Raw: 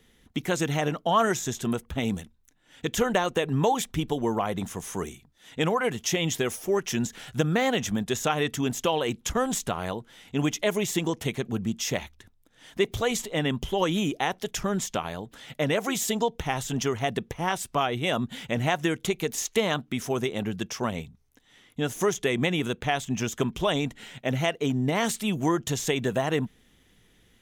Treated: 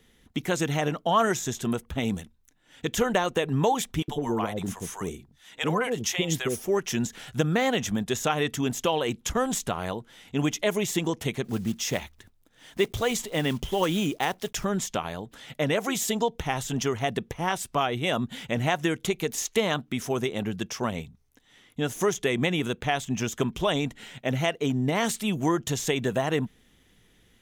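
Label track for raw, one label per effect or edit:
4.020000	6.640000	bands offset in time highs, lows 60 ms, split 650 Hz
11.440000	14.660000	block floating point 5-bit

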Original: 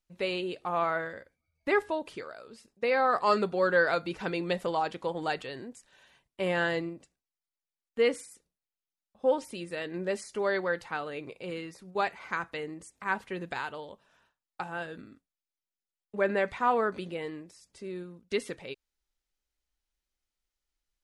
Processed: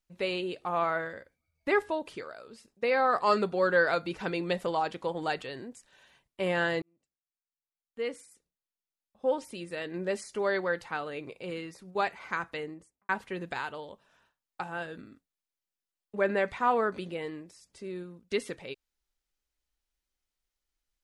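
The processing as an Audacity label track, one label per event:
6.820000	10.050000	fade in
12.570000	13.090000	studio fade out

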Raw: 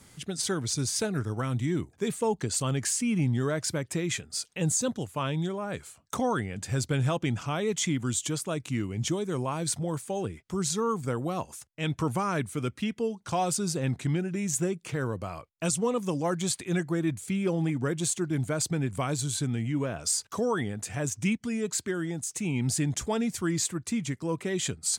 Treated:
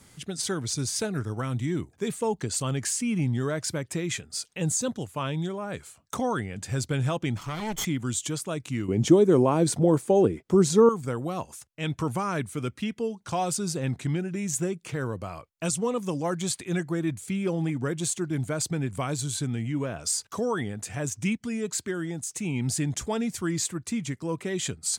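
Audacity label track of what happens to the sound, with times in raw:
7.360000	7.850000	minimum comb delay 0.93 ms
8.880000	10.890000	bell 360 Hz +14 dB 2.5 oct

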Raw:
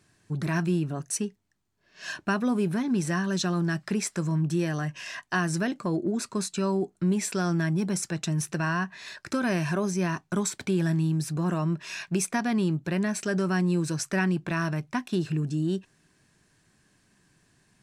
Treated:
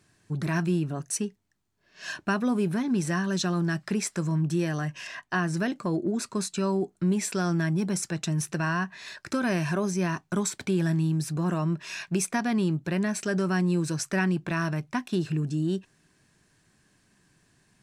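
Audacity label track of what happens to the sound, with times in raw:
5.070000	5.570000	high shelf 4400 Hz -8.5 dB

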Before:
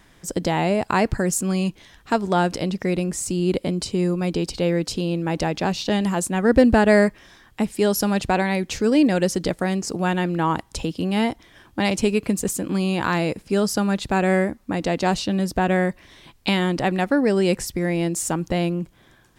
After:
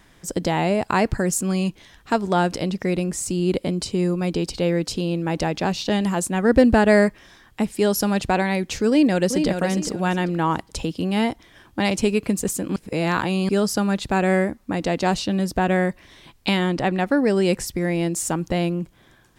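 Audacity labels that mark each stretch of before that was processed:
8.890000	9.470000	echo throw 0.41 s, feedback 25%, level -6.5 dB
12.760000	13.490000	reverse
16.560000	17.050000	LPF 9100 Hz -> 4200 Hz 6 dB/oct

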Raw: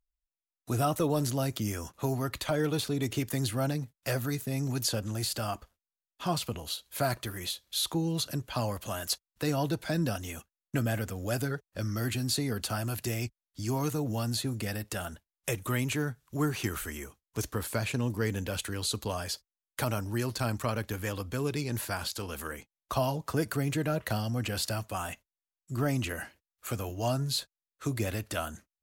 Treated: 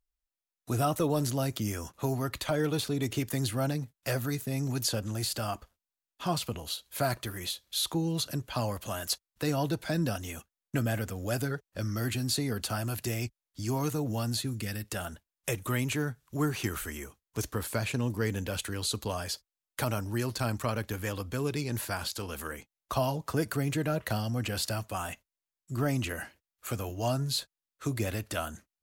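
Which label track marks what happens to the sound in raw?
14.410000	14.920000	bell 700 Hz -9 dB 1.4 oct

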